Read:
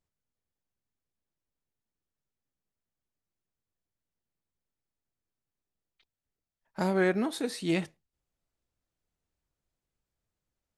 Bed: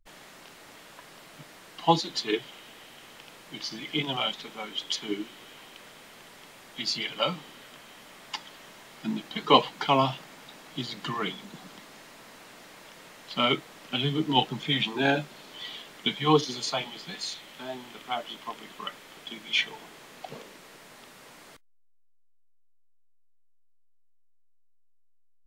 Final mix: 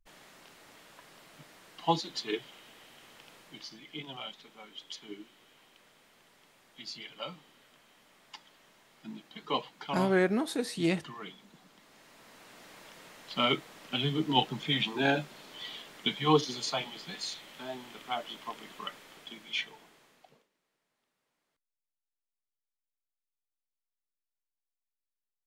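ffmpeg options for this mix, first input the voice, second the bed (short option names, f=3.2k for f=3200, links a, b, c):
-filter_complex "[0:a]adelay=3150,volume=0dB[a];[1:a]volume=4dB,afade=t=out:st=3.38:d=0.41:silence=0.446684,afade=t=in:st=11.75:d=0.99:silence=0.316228,afade=t=out:st=18.79:d=1.69:silence=0.0354813[b];[a][b]amix=inputs=2:normalize=0"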